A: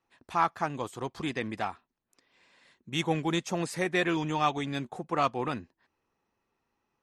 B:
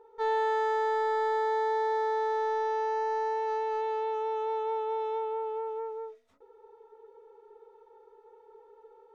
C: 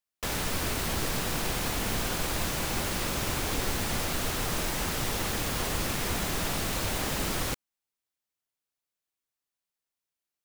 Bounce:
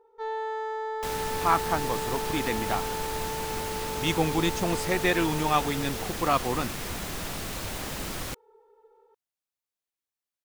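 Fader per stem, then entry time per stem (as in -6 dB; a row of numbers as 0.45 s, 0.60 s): +2.5 dB, -4.5 dB, -4.0 dB; 1.10 s, 0.00 s, 0.80 s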